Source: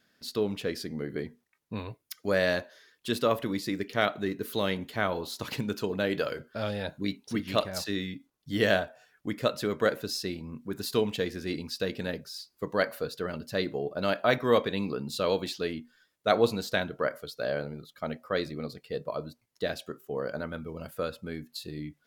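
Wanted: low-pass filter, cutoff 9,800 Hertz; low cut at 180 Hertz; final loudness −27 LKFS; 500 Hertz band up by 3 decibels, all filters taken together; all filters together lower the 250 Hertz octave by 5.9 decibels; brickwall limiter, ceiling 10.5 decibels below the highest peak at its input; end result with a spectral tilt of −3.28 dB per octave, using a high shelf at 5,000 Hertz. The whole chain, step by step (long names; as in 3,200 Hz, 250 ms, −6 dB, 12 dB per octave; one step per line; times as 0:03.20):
high-pass filter 180 Hz
low-pass filter 9,800 Hz
parametric band 250 Hz −8.5 dB
parametric band 500 Hz +5.5 dB
high-shelf EQ 5,000 Hz +5.5 dB
level +5.5 dB
brickwall limiter −12.5 dBFS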